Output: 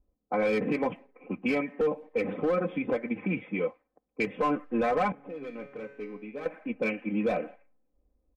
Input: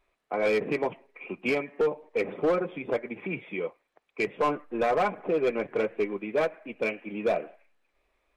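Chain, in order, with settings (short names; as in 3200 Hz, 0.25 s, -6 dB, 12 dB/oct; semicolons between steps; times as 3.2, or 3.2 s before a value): low-pass opened by the level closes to 380 Hz, open at -26.5 dBFS; bell 97 Hz +12 dB 2.8 oct; comb 3.9 ms, depth 64%; limiter -17.5 dBFS, peak gain reduction 7.5 dB; dynamic EQ 1700 Hz, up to +3 dB, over -46 dBFS, Q 1.1; 5.12–6.46 resonator 140 Hz, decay 0.74 s, harmonics all, mix 80%; gain -2 dB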